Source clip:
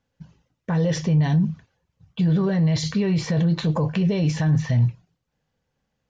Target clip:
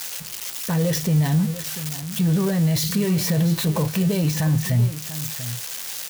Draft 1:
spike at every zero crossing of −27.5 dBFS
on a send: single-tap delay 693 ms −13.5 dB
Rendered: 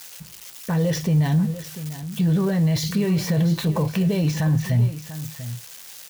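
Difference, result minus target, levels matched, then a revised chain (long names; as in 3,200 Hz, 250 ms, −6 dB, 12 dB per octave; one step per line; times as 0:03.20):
spike at every zero crossing: distortion −9 dB
spike at every zero crossing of −18 dBFS
on a send: single-tap delay 693 ms −13.5 dB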